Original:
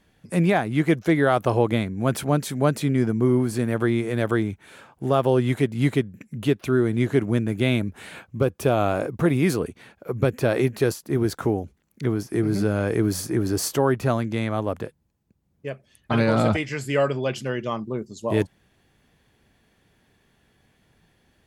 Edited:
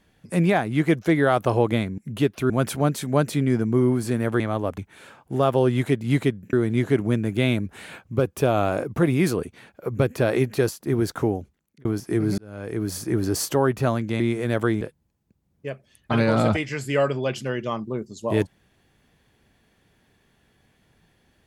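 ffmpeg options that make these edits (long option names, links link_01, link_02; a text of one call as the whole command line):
ffmpeg -i in.wav -filter_complex "[0:a]asplit=10[link_01][link_02][link_03][link_04][link_05][link_06][link_07][link_08][link_09][link_10];[link_01]atrim=end=1.982[link_11];[link_02]atrim=start=6.238:end=6.762[link_12];[link_03]atrim=start=1.978:end=3.882[link_13];[link_04]atrim=start=14.428:end=14.812[link_14];[link_05]atrim=start=4.488:end=6.242[link_15];[link_06]atrim=start=6.758:end=12.08,asetpts=PTS-STARTPTS,afade=type=out:start_time=4.822:duration=0.5[link_16];[link_07]atrim=start=12.08:end=12.61,asetpts=PTS-STARTPTS,afade=type=in:duration=0.004:curve=hsin,afade=type=out:start_time=0.526:duration=0.004:curve=hsin[link_17];[link_08]atrim=start=12.61:end=14.432,asetpts=PTS-STARTPTS,afade=type=in:duration=0.78[link_18];[link_09]atrim=start=3.878:end=4.492[link_19];[link_10]atrim=start=14.808[link_20];[link_11][link_12]acrossfade=duration=0.004:curve1=hsin:curve2=hsin[link_21];[link_21][link_13]acrossfade=duration=0.004:curve1=hsin:curve2=hsin[link_22];[link_22][link_14]acrossfade=duration=0.004:curve1=hsin:curve2=hsin[link_23];[link_23][link_15]acrossfade=duration=0.004:curve1=hsin:curve2=hsin[link_24];[link_16][link_17][link_18]concat=n=3:v=0:a=1[link_25];[link_24][link_25]acrossfade=duration=0.004:curve1=hsin:curve2=hsin[link_26];[link_26][link_19]acrossfade=duration=0.004:curve1=hsin:curve2=hsin[link_27];[link_27][link_20]acrossfade=duration=0.004:curve1=hsin:curve2=hsin" out.wav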